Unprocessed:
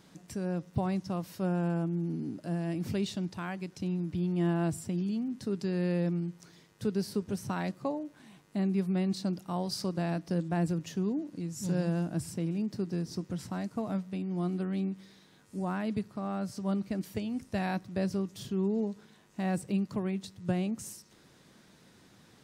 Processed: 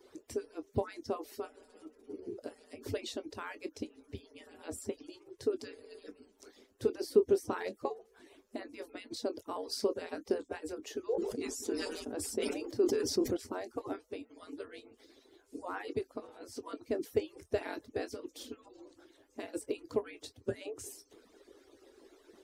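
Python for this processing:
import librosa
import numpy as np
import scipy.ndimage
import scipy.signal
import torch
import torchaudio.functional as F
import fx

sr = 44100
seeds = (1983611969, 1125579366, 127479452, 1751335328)

y = fx.hpss_only(x, sr, part='percussive')
y = fx.peak_eq(y, sr, hz=150.0, db=-12.5, octaves=0.53)
y = fx.chorus_voices(y, sr, voices=2, hz=0.34, base_ms=23, depth_ms=2.6, mix_pct=20)
y = fx.peak_eq(y, sr, hz=400.0, db=15.0, octaves=1.0)
y = fx.sustainer(y, sr, db_per_s=39.0, at=(11.03, 13.37))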